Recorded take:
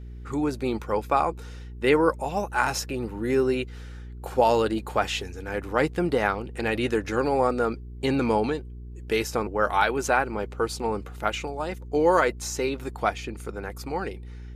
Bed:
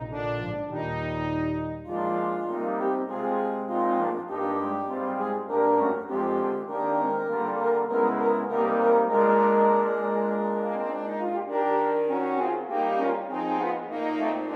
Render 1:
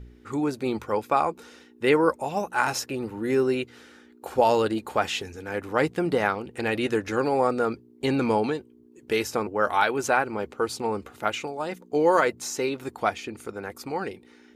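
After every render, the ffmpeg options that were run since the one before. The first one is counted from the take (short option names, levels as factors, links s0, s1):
-af "bandreject=f=60:t=h:w=4,bandreject=f=120:t=h:w=4,bandreject=f=180:t=h:w=4"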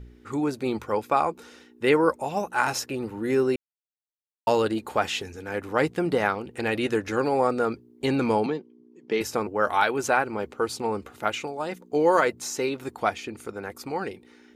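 -filter_complex "[0:a]asettb=1/sr,asplit=3[s0][s1][s2];[s0]atrim=end=8.464[s3];[s1]atrim=start=8.46:end=9.21,asetpts=PTS-STARTPTS,afade=t=in:d=0.004:c=qsin,afade=t=out:st=0.746:d=0.004:c=qsin,highpass=f=160:w=0.5412,highpass=f=160:w=1.3066,equalizer=f=170:t=q:w=4:g=6,equalizer=f=610:t=q:w=4:g=-3,equalizer=f=1500:t=q:w=4:g=-8,equalizer=f=2700:t=q:w=4:g=-5,equalizer=f=4000:t=q:w=4:g=-6,lowpass=f=5400:w=0.5412,lowpass=f=5400:w=1.3066[s4];[s2]atrim=start=9.206[s5];[s3][s4]acrossfade=d=0.004:c1=hsin:c2=qsin[s6];[s6][s5]acrossfade=d=0.004:c1=qsin:c2=hsin,asplit=3[s7][s8][s9];[s7]atrim=end=3.56,asetpts=PTS-STARTPTS,afade=t=out:st=3.556:d=0.004:c=hsin[s10];[s8]atrim=start=3.56:end=4.47,asetpts=PTS-STARTPTS,volume=0[s11];[s9]atrim=start=4.47,asetpts=PTS-STARTPTS,afade=t=in:d=0.004:c=hsin[s12];[s10][s11][s12]concat=n=3:v=0:a=1"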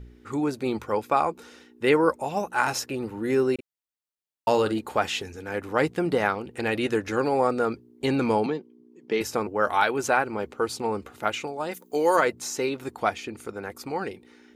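-filter_complex "[0:a]asettb=1/sr,asplit=3[s0][s1][s2];[s0]atrim=end=3.544[s3];[s1]atrim=start=3.54:end=4.81,asetpts=PTS-STARTPTS,afade=t=in:d=0.004:c=qsin,afade=t=out:st=1.266:d=0.004:c=qsin,asplit=2[s4][s5];[s5]adelay=46,volume=0.251[s6];[s4][s6]amix=inputs=2:normalize=0,atrim=end_sample=56007[s7];[s2]atrim=start=4.806[s8];[s3][s7]acrossfade=d=0.004:c1=hsin:c2=qsin[s9];[s9][s8]acrossfade=d=0.004:c1=qsin:c2=hsin,asplit=3[s10][s11][s12];[s10]afade=t=out:st=11.71:d=0.02[s13];[s11]aemphasis=mode=production:type=bsi,afade=t=in:st=11.71:d=0.02,afade=t=out:st=12.15:d=0.02[s14];[s12]afade=t=in:st=12.15:d=0.02[s15];[s13][s14][s15]amix=inputs=3:normalize=0"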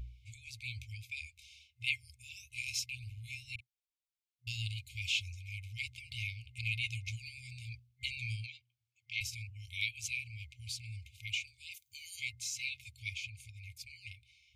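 -af "afftfilt=real='re*(1-between(b*sr/4096,120,2100))':imag='im*(1-between(b*sr/4096,120,2100))':win_size=4096:overlap=0.75,lowpass=f=3400:p=1"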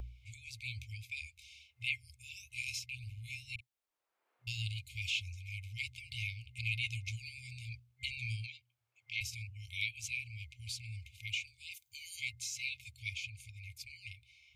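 -filter_complex "[0:a]acrossover=split=360|1700|2600[s0][s1][s2][s3];[s1]acompressor=mode=upward:threshold=0.00158:ratio=2.5[s4];[s3]alimiter=level_in=2.11:limit=0.0631:level=0:latency=1:release=266,volume=0.473[s5];[s0][s4][s2][s5]amix=inputs=4:normalize=0"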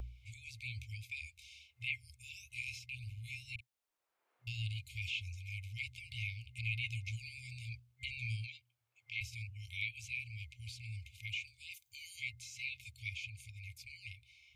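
-filter_complex "[0:a]acrossover=split=2900[s0][s1];[s1]acompressor=threshold=0.00316:ratio=4:attack=1:release=60[s2];[s0][s2]amix=inputs=2:normalize=0"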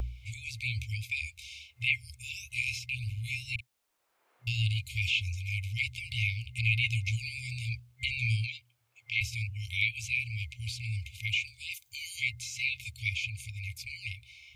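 -af "volume=3.35"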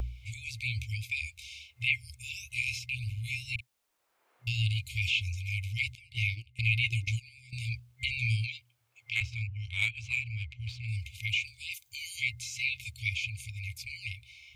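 -filter_complex "[0:a]asettb=1/sr,asplit=3[s0][s1][s2];[s0]atrim=end=5.954[s3];[s1]atrim=start=5.95:end=7.53,asetpts=PTS-STARTPTS,afade=t=in:d=0.004:c=qsin,afade=t=out:st=1.576:d=0.004:c=qsin,agate=range=0.178:threshold=0.0178:ratio=16:release=100:detection=peak[s4];[s2]atrim=start=7.526[s5];[s3][s4]acrossfade=d=0.004:c1=hsin:c2=qsin[s6];[s6][s5]acrossfade=d=0.004:c1=qsin:c2=hsin,asplit=3[s7][s8][s9];[s7]afade=t=out:st=9.14:d=0.02[s10];[s8]adynamicsmooth=sensitivity=2.5:basefreq=3100,afade=t=in:st=9.14:d=0.02,afade=t=out:st=10.87:d=0.02[s11];[s9]afade=t=in:st=10.87:d=0.02[s12];[s10][s11][s12]amix=inputs=3:normalize=0"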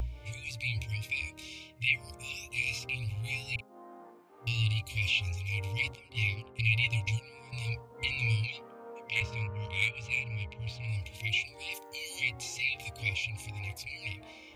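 -filter_complex "[1:a]volume=0.0473[s0];[0:a][s0]amix=inputs=2:normalize=0"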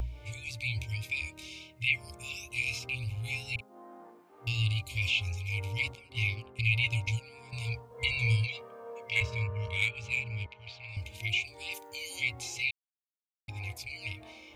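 -filter_complex "[0:a]asettb=1/sr,asplit=3[s0][s1][s2];[s0]atrim=end=7.914[s3];[s1]atrim=start=7.91:end=9.77,asetpts=PTS-STARTPTS,afade=t=in:d=0.004:c=qsin,afade=t=out:st=1.856:d=0.004:c=qsin,aecho=1:1:1.8:0.65,atrim=end_sample=82026[s4];[s2]atrim=start=9.766[s5];[s3][s4]acrossfade=d=0.004:c1=hsin:c2=qsin[s6];[s6][s5]acrossfade=d=0.004:c1=qsin:c2=hsin,asettb=1/sr,asplit=3[s7][s8][s9];[s7]atrim=end=10.464[s10];[s8]atrim=start=10.46:end=10.97,asetpts=PTS-STARTPTS,afade=t=in:d=0.004:c=qsin,afade=t=out:st=0.506:d=0.004:c=qsin,acrossover=split=580 5900:gain=0.2 1 0.0708[s11][s12][s13];[s11][s12][s13]amix=inputs=3:normalize=0[s14];[s9]atrim=start=10.966[s15];[s10][s14]acrossfade=d=0.004:c1=hsin:c2=qsin[s16];[s16][s15]acrossfade=d=0.004:c1=qsin:c2=hsin,asplit=3[s17][s18][s19];[s17]atrim=end=12.71,asetpts=PTS-STARTPTS,afade=t=out:st=12.706:d=0.004:c=hsin[s20];[s18]atrim=start=12.71:end=13.48,asetpts=PTS-STARTPTS,volume=0[s21];[s19]atrim=start=13.48,asetpts=PTS-STARTPTS,afade=t=in:d=0.004:c=hsin[s22];[s20][s21][s22]concat=n=3:v=0:a=1"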